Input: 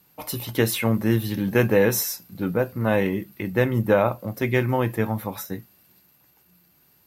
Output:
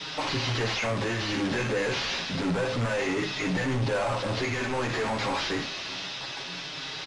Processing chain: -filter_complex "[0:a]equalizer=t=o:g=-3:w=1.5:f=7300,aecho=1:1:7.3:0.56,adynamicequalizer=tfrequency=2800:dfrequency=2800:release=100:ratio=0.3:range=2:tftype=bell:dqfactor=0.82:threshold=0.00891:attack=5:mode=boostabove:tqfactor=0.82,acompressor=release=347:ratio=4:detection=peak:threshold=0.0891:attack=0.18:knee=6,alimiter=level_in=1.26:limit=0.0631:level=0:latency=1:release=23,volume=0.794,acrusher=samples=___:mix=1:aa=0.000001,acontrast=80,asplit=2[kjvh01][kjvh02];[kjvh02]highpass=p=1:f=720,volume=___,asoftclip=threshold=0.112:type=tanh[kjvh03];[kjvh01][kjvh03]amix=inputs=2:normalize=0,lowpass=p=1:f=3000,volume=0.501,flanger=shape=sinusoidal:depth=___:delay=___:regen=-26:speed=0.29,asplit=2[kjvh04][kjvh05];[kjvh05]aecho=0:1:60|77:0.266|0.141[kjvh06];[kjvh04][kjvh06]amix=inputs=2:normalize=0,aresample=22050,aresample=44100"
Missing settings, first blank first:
5, 50.1, 7.4, 6.5